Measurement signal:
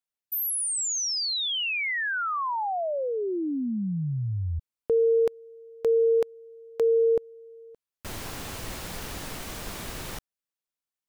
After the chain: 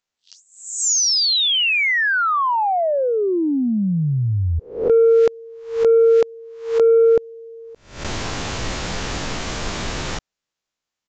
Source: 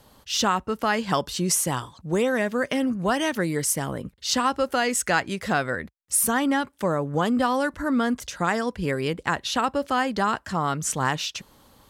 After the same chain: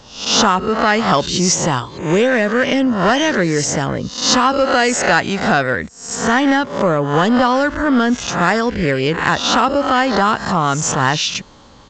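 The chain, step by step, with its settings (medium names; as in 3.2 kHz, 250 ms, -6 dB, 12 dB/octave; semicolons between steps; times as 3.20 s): reverse spectral sustain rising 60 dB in 0.49 s; in parallel at +2 dB: saturation -19 dBFS; on the sum: resampled via 16 kHz; trim +2.5 dB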